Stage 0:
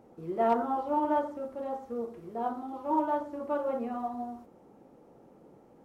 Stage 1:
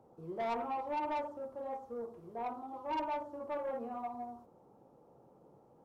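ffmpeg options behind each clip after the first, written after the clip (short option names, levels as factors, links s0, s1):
-filter_complex "[0:a]equalizer=f=125:t=o:w=1:g=7,equalizer=f=250:t=o:w=1:g=-3,equalizer=f=500:t=o:w=1:g=3,equalizer=f=1000:t=o:w=1:g=7,equalizer=f=2000:t=o:w=1:g=-7,acrossover=split=170|1900[s0][s1][s2];[s1]asoftclip=type=tanh:threshold=0.0668[s3];[s0][s3][s2]amix=inputs=3:normalize=0,volume=0.376"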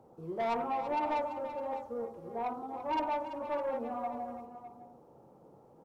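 -af "aecho=1:1:336|607:0.266|0.188,volume=1.5"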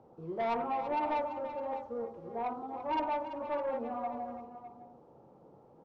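-af "lowpass=4600"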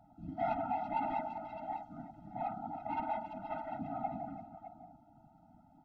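-filter_complex "[0:a]acrossover=split=2800[s0][s1];[s1]acompressor=threshold=0.00112:ratio=4:attack=1:release=60[s2];[s0][s2]amix=inputs=2:normalize=0,afftfilt=real='hypot(re,im)*cos(2*PI*random(0))':imag='hypot(re,im)*sin(2*PI*random(1))':win_size=512:overlap=0.75,afftfilt=real='re*eq(mod(floor(b*sr/1024/310),2),0)':imag='im*eq(mod(floor(b*sr/1024/310),2),0)':win_size=1024:overlap=0.75,volume=1.88"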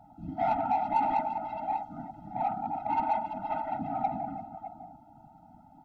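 -filter_complex "[0:a]superequalizer=7b=1.58:9b=1.78,asplit=2[s0][s1];[s1]asoftclip=type=tanh:threshold=0.0251,volume=0.501[s2];[s0][s2]amix=inputs=2:normalize=0,volume=1.26"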